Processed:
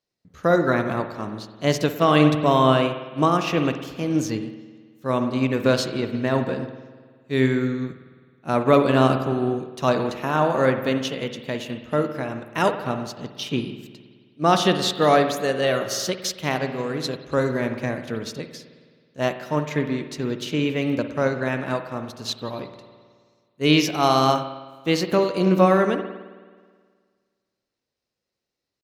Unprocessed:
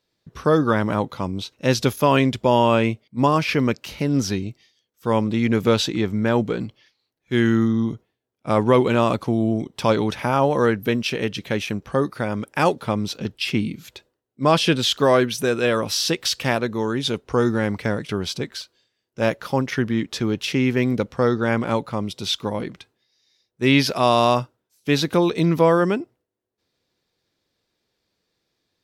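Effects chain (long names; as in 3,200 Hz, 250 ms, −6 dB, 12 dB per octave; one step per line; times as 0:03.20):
pitch shifter +2 semitones
spring reverb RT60 1.8 s, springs 53 ms, chirp 40 ms, DRR 5 dB
expander for the loud parts 1.5 to 1, over −32 dBFS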